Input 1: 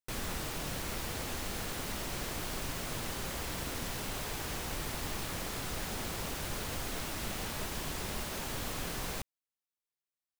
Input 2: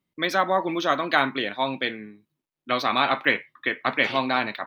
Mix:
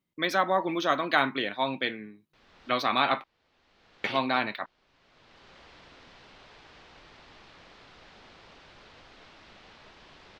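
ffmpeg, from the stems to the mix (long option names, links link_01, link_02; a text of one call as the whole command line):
ffmpeg -i stem1.wav -i stem2.wav -filter_complex "[0:a]lowpass=frequency=4500:width=0.5412,lowpass=frequency=4500:width=1.3066,lowshelf=frequency=270:gain=-10.5,adelay=2250,volume=-11dB[link_01];[1:a]volume=-3dB,asplit=3[link_02][link_03][link_04];[link_02]atrim=end=3.24,asetpts=PTS-STARTPTS,afade=type=out:start_time=3.236:duration=0.004:curve=hsin[link_05];[link_03]atrim=start=3.24:end=4.04,asetpts=PTS-STARTPTS,volume=0[link_06];[link_04]atrim=start=4.04,asetpts=PTS-STARTPTS,afade=type=in:duration=0.004:curve=hsin[link_07];[link_05][link_06][link_07]concat=n=3:v=0:a=1,asplit=2[link_08][link_09];[link_09]apad=whole_len=557695[link_10];[link_01][link_10]sidechaincompress=threshold=-43dB:ratio=10:attack=7.8:release=660[link_11];[link_11][link_08]amix=inputs=2:normalize=0" out.wav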